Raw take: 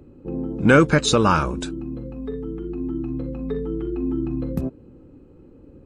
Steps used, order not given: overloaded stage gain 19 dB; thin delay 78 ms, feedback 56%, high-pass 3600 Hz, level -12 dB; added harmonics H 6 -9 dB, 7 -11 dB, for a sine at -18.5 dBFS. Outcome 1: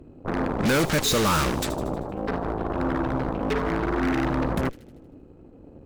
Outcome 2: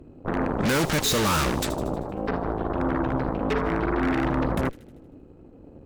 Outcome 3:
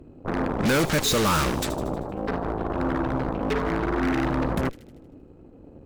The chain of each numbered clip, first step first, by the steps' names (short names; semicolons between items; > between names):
added harmonics > overloaded stage > thin delay; overloaded stage > added harmonics > thin delay; added harmonics > thin delay > overloaded stage